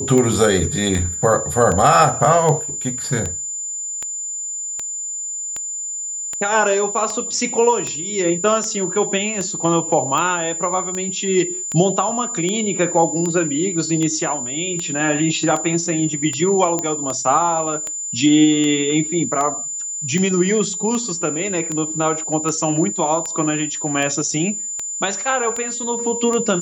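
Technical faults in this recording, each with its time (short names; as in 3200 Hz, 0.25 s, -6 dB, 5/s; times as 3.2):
tick 78 rpm -11 dBFS
tone 7100 Hz -24 dBFS
16.79 pop -8 dBFS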